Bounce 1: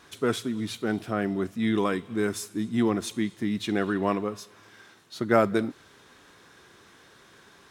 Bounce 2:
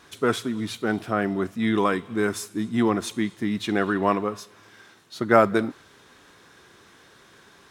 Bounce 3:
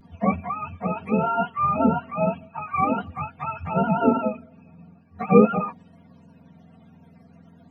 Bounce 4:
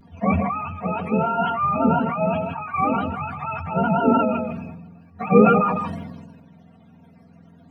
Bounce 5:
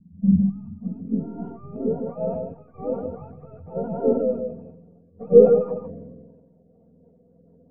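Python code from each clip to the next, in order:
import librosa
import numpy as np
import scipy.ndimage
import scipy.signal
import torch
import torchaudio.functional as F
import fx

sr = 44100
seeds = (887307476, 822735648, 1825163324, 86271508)

y1 = fx.dynamic_eq(x, sr, hz=1100.0, q=0.75, threshold_db=-42.0, ratio=4.0, max_db=5)
y1 = F.gain(torch.from_numpy(y1), 1.5).numpy()
y2 = fx.octave_mirror(y1, sr, pivot_hz=520.0)
y2 = y2 + 0.77 * np.pad(y2, (int(4.3 * sr / 1000.0), 0))[:len(y2)]
y2 = fx.vibrato(y2, sr, rate_hz=0.4, depth_cents=24.0)
y3 = y2 + 10.0 ** (-13.5 / 20.0) * np.pad(y2, (int(158 * sr / 1000.0), 0))[:len(y2)]
y3 = fx.sustainer(y3, sr, db_per_s=37.0)
y4 = np.where(y3 < 0.0, 10.0 ** (-3.0 / 20.0) * y3, y3)
y4 = fx.rotary_switch(y4, sr, hz=1.2, then_hz=5.0, switch_at_s=6.3)
y4 = fx.filter_sweep_lowpass(y4, sr, from_hz=190.0, to_hz=500.0, start_s=0.54, end_s=2.11, q=6.6)
y4 = F.gain(torch.from_numpy(y4), -6.5).numpy()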